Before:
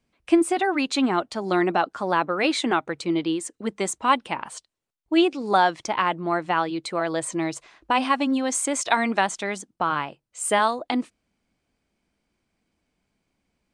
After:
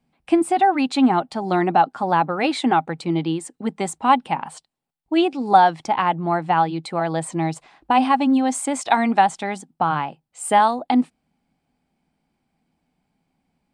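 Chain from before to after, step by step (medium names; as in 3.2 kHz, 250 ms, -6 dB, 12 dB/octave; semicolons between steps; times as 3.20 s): graphic EQ with 31 bands 160 Hz +12 dB, 250 Hz +8 dB, 800 Hz +12 dB, 6.3 kHz -6 dB; trim -1 dB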